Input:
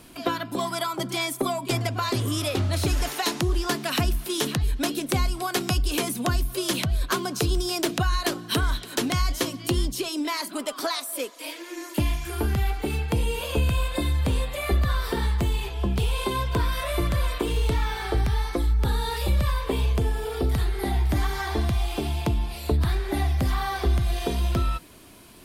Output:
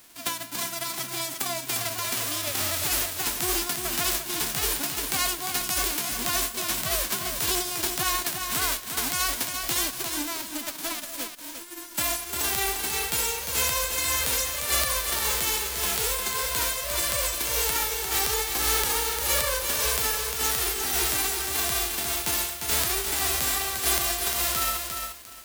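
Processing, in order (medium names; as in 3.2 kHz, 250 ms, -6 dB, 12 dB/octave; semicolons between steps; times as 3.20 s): formants flattened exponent 0.1; bit-crushed delay 351 ms, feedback 35%, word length 6-bit, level -5 dB; trim -4 dB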